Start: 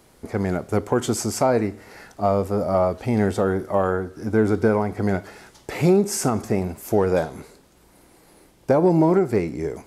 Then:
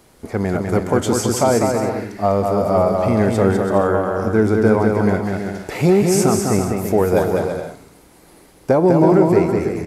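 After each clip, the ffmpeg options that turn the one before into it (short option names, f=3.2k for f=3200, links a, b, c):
-af "aecho=1:1:200|330|414.5|469.4|505.1:0.631|0.398|0.251|0.158|0.1,volume=3dB"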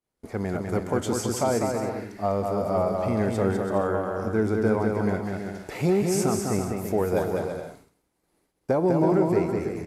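-af "agate=range=-33dB:threshold=-36dB:ratio=3:detection=peak,volume=-8.5dB"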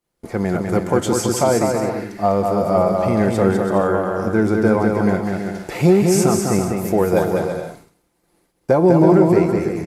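-af "aecho=1:1:5.8:0.33,volume=7.5dB"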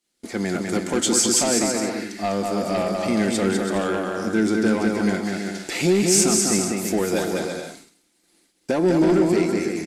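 -filter_complex "[0:a]asplit=2[a][b];[b]highpass=f=720:p=1,volume=15dB,asoftclip=type=tanh:threshold=-1.5dB[c];[a][c]amix=inputs=2:normalize=0,lowpass=f=4.9k:p=1,volume=-6dB,equalizer=f=125:t=o:w=1:g=-8,equalizer=f=250:t=o:w=1:g=9,equalizer=f=500:t=o:w=1:g=-6,equalizer=f=1k:t=o:w=1:g=-9,equalizer=f=4k:t=o:w=1:g=5,equalizer=f=8k:t=o:w=1:g=9,volume=-6dB"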